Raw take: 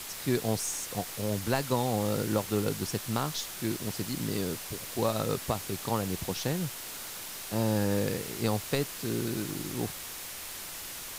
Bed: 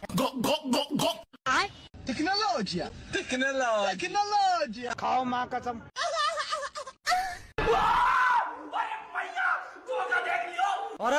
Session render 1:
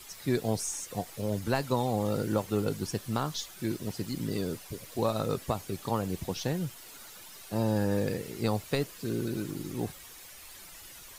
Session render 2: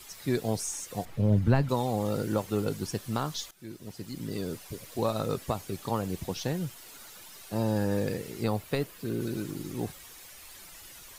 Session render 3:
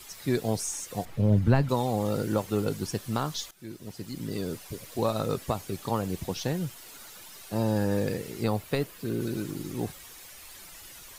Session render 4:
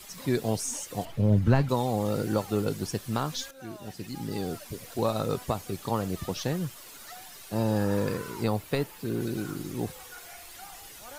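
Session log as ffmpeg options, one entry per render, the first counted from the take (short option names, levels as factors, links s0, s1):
-af "afftdn=nr=11:nf=-41"
-filter_complex "[0:a]asettb=1/sr,asplit=3[s0][s1][s2];[s0]atrim=end=1.054[s3];[s1]atrim=start=1.05:end=1.69,asetpts=PTS-STARTPTS,afade=t=in:d=0.004:c=qsin,afade=t=out:st=0.636:d=0.004:c=qsin,bass=f=250:g=12,treble=f=4000:g=-13[s4];[s2]atrim=start=1.686[s5];[s3][s4]acrossfade=d=0.004:c1=hsin:c2=qsin[s6];[s6][s5]acrossfade=d=0.004:c1=qsin:c2=hsin,asettb=1/sr,asplit=3[s7][s8][s9];[s7]atrim=end=8.444[s10];[s8]atrim=start=8.44:end=9.21,asetpts=PTS-STARTPTS,afade=t=in:d=0.004:c=qsin,afade=t=out:st=0.766:d=0.004:c=qsin,equalizer=f=6200:t=o:w=1.3:g=-5.5[s11];[s9]atrim=start=9.206[s12];[s10][s11]acrossfade=d=0.004:c1=hsin:c2=qsin[s13];[s13][s12]acrossfade=d=0.004:c1=qsin:c2=hsin,asplit=2[s14][s15];[s14]atrim=end=3.51,asetpts=PTS-STARTPTS,afade=t=out:st=3.506:d=0.004:c=hsin:silence=0.158489[s16];[s15]atrim=start=3.51,asetpts=PTS-STARTPTS,afade=t=in:d=1.15:silence=0.158489[s17];[s16][s17]concat=n=2:v=0:a=1"
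-af "volume=1.19"
-filter_complex "[1:a]volume=0.0891[s0];[0:a][s0]amix=inputs=2:normalize=0"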